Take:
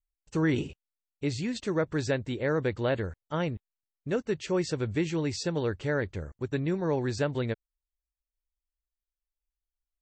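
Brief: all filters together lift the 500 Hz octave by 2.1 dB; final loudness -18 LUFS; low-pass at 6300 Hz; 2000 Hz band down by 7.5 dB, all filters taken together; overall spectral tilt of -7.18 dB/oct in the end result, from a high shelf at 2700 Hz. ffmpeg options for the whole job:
-af "lowpass=6.3k,equalizer=f=500:t=o:g=3,equalizer=f=2k:t=o:g=-9,highshelf=f=2.7k:g=-3,volume=12dB"

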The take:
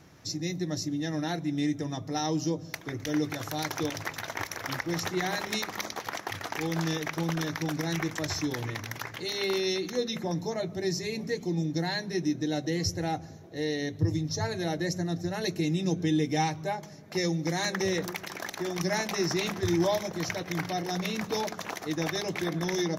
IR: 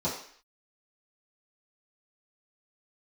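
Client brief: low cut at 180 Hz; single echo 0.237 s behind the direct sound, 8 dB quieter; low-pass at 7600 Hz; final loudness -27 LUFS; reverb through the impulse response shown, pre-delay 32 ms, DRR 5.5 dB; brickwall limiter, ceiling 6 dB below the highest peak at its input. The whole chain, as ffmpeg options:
-filter_complex "[0:a]highpass=180,lowpass=7.6k,alimiter=limit=-21.5dB:level=0:latency=1,aecho=1:1:237:0.398,asplit=2[a][b];[1:a]atrim=start_sample=2205,adelay=32[c];[b][c]afir=irnorm=-1:irlink=0,volume=-14dB[d];[a][d]amix=inputs=2:normalize=0,volume=3dB"

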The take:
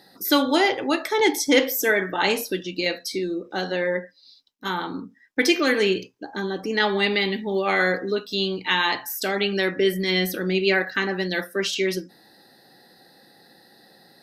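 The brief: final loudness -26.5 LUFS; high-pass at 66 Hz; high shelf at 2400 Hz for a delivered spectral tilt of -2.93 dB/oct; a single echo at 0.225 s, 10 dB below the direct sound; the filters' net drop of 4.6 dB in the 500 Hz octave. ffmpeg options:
-af "highpass=66,equalizer=f=500:t=o:g=-6.5,highshelf=f=2.4k:g=4.5,aecho=1:1:225:0.316,volume=-4dB"

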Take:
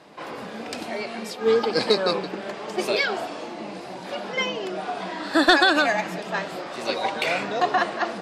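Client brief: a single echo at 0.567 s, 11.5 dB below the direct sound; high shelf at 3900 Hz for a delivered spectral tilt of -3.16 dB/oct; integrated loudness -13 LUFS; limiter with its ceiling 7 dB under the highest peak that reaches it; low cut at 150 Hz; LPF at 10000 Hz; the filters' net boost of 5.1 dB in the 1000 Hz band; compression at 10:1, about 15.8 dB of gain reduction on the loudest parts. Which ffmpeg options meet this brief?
-af "highpass=150,lowpass=10k,equalizer=f=1k:t=o:g=7,highshelf=f=3.9k:g=4,acompressor=threshold=-24dB:ratio=10,alimiter=limit=-20dB:level=0:latency=1,aecho=1:1:567:0.266,volume=17dB"

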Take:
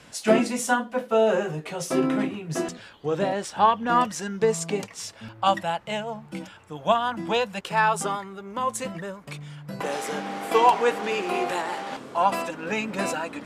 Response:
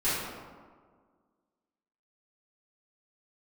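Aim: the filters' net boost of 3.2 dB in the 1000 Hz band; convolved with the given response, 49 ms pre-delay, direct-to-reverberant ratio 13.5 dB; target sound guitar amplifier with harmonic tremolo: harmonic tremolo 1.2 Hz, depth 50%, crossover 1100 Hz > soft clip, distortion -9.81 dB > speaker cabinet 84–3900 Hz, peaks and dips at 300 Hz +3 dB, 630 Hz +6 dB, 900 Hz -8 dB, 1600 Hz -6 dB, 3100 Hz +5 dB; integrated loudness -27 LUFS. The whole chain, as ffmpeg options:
-filter_complex "[0:a]equalizer=f=1k:t=o:g=8,asplit=2[a][b];[1:a]atrim=start_sample=2205,adelay=49[c];[b][c]afir=irnorm=-1:irlink=0,volume=-25dB[d];[a][d]amix=inputs=2:normalize=0,acrossover=split=1100[e][f];[e]aeval=exprs='val(0)*(1-0.5/2+0.5/2*cos(2*PI*1.2*n/s))':c=same[g];[f]aeval=exprs='val(0)*(1-0.5/2-0.5/2*cos(2*PI*1.2*n/s))':c=same[h];[g][h]amix=inputs=2:normalize=0,asoftclip=threshold=-15.5dB,highpass=84,equalizer=f=300:t=q:w=4:g=3,equalizer=f=630:t=q:w=4:g=6,equalizer=f=900:t=q:w=4:g=-8,equalizer=f=1.6k:t=q:w=4:g=-6,equalizer=f=3.1k:t=q:w=4:g=5,lowpass=f=3.9k:w=0.5412,lowpass=f=3.9k:w=1.3066"

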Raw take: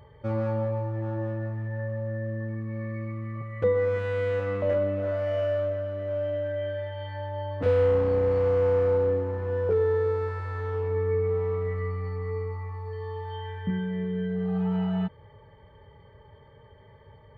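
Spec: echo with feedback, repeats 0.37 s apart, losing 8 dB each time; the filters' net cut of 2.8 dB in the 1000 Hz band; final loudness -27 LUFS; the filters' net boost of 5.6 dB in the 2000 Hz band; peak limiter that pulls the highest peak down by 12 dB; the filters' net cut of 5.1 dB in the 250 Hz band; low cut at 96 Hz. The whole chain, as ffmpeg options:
-af "highpass=96,equalizer=f=250:t=o:g=-7.5,equalizer=f=1k:t=o:g=-5.5,equalizer=f=2k:t=o:g=8.5,alimiter=level_in=3dB:limit=-24dB:level=0:latency=1,volume=-3dB,aecho=1:1:370|740|1110|1480|1850:0.398|0.159|0.0637|0.0255|0.0102,volume=7dB"

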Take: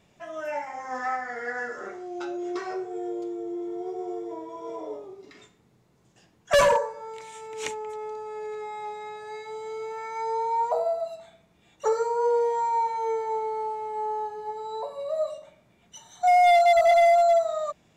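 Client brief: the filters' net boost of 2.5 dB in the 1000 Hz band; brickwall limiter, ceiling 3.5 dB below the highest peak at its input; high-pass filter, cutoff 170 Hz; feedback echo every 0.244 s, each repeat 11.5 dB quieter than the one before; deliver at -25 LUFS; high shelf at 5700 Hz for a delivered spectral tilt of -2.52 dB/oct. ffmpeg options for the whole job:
-af "highpass=170,equalizer=f=1k:t=o:g=4,highshelf=f=5.7k:g=-7.5,alimiter=limit=-14dB:level=0:latency=1,aecho=1:1:244|488|732:0.266|0.0718|0.0194,volume=0.5dB"

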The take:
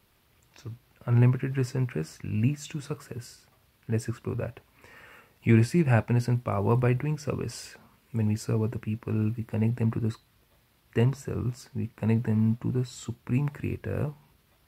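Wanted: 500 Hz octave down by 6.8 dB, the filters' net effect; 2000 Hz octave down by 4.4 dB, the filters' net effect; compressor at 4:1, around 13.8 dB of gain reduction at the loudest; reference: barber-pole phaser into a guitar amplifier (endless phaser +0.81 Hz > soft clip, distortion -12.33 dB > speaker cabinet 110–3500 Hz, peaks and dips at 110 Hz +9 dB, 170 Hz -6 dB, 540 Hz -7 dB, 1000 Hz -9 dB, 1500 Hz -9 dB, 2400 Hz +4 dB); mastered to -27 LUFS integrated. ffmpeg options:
-filter_complex "[0:a]equalizer=f=500:t=o:g=-6,equalizer=f=2k:t=o:g=-4,acompressor=threshold=-34dB:ratio=4,asplit=2[a][b];[b]afreqshift=0.81[c];[a][c]amix=inputs=2:normalize=1,asoftclip=threshold=-37dB,highpass=110,equalizer=f=110:t=q:w=4:g=9,equalizer=f=170:t=q:w=4:g=-6,equalizer=f=540:t=q:w=4:g=-7,equalizer=f=1k:t=q:w=4:g=-9,equalizer=f=1.5k:t=q:w=4:g=-9,equalizer=f=2.4k:t=q:w=4:g=4,lowpass=f=3.5k:w=0.5412,lowpass=f=3.5k:w=1.3066,volume=16.5dB"

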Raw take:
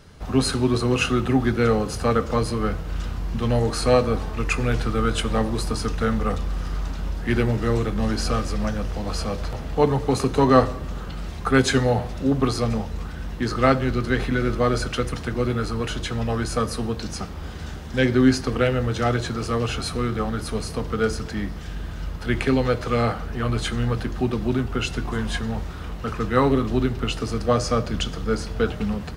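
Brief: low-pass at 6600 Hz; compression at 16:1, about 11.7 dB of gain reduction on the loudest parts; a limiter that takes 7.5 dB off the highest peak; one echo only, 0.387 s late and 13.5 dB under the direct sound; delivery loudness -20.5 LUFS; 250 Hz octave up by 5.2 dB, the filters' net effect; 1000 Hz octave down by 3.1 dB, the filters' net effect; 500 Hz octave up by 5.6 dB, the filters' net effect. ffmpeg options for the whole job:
-af "lowpass=6.6k,equalizer=f=250:t=o:g=4.5,equalizer=f=500:t=o:g=6.5,equalizer=f=1k:t=o:g=-6.5,acompressor=threshold=-18dB:ratio=16,alimiter=limit=-16.5dB:level=0:latency=1,aecho=1:1:387:0.211,volume=6dB"

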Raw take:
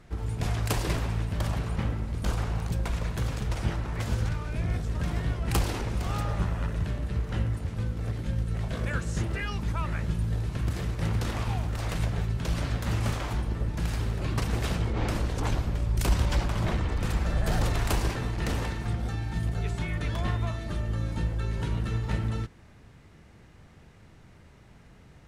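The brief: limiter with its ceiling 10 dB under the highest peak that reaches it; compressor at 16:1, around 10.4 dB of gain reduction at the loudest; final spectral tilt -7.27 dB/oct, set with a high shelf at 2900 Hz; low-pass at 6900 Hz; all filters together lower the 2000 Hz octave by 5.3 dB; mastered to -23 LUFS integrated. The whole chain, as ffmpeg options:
-af "lowpass=6.9k,equalizer=f=2k:t=o:g=-4,highshelf=f=2.9k:g=-7.5,acompressor=threshold=-30dB:ratio=16,volume=18dB,alimiter=limit=-14dB:level=0:latency=1"

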